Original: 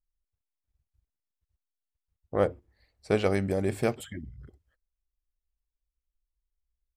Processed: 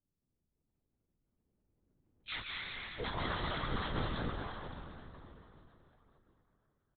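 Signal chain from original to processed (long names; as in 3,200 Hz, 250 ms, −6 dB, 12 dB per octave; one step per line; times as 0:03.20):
frequency axis turned over on the octave scale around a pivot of 1,600 Hz
source passing by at 0:02.64, 8 m/s, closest 4.8 metres
downward compressor, threshold −40 dBFS, peak gain reduction 12 dB
far-end echo of a speakerphone 240 ms, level −8 dB
convolution reverb RT60 3.7 s, pre-delay 118 ms, DRR −3 dB
chorus effect 2.1 Hz, delay 16 ms, depth 2 ms
linear-prediction vocoder at 8 kHz whisper
level +12 dB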